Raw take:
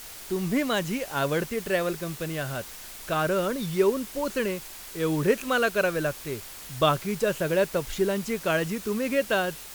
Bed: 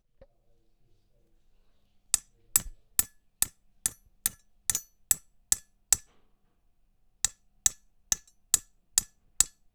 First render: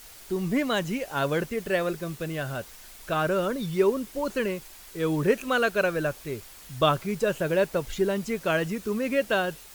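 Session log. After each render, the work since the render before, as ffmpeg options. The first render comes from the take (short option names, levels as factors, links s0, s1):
-af "afftdn=nr=6:nf=-42"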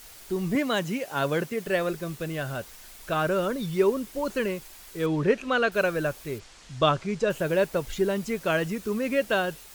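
-filter_complex "[0:a]asettb=1/sr,asplit=3[s0][s1][s2];[s0]atrim=end=0.554[s3];[s1]atrim=start=0.55:end=1.67,asetpts=PTS-STARTPTS,afade=t=in:d=0.004:c=qsin,afade=t=out:st=1.116:d=0.004:c=qsin,highpass=f=100:w=0.5412,highpass=f=100:w=1.3066[s4];[s2]atrim=start=1.666[s5];[s3][s4]acrossfade=d=0.004:c1=hsin:c2=qsin[s6];[s6][s5]acrossfade=d=0.004:c1=qsin:c2=hsin,asettb=1/sr,asplit=3[s7][s8][s9];[s7]atrim=end=5.064[s10];[s8]atrim=start=5.06:end=5.72,asetpts=PTS-STARTPTS,afade=t=in:d=0.004:c=qsin,afade=t=out:st=0.656:d=0.004:c=qsin,lowpass=5200[s11];[s9]atrim=start=5.716[s12];[s10][s11]acrossfade=d=0.004:c1=hsin:c2=qsin[s13];[s13][s12]acrossfade=d=0.004:c1=qsin:c2=hsin,asplit=3[s14][s15][s16];[s14]afade=t=out:st=6.38:d=0.02[s17];[s15]lowpass=f=7400:w=0.5412,lowpass=f=7400:w=1.3066,afade=t=in:st=6.38:d=0.02,afade=t=out:st=7.29:d=0.02[s18];[s16]afade=t=in:st=7.29:d=0.02[s19];[s17][s18][s19]amix=inputs=3:normalize=0"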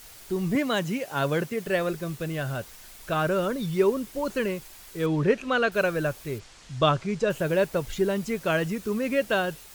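-af "equalizer=f=120:t=o:w=0.94:g=4"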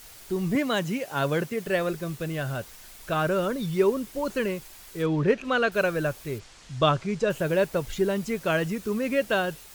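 -filter_complex "[0:a]asplit=3[s0][s1][s2];[s0]afade=t=out:st=5.02:d=0.02[s3];[s1]adynamicsmooth=sensitivity=7:basefreq=7000,afade=t=in:st=5.02:d=0.02,afade=t=out:st=5.43:d=0.02[s4];[s2]afade=t=in:st=5.43:d=0.02[s5];[s3][s4][s5]amix=inputs=3:normalize=0"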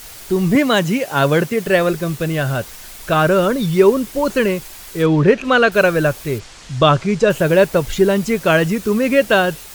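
-af "volume=3.55,alimiter=limit=0.891:level=0:latency=1"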